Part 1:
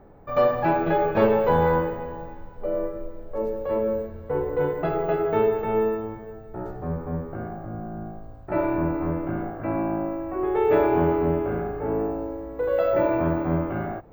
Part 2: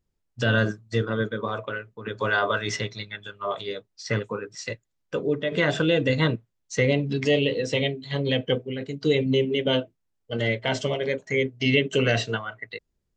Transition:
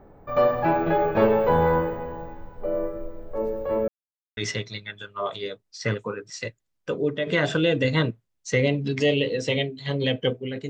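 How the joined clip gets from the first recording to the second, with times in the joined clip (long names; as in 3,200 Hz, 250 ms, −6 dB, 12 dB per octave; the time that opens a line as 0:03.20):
part 1
0:03.88–0:04.37: silence
0:04.37: continue with part 2 from 0:02.62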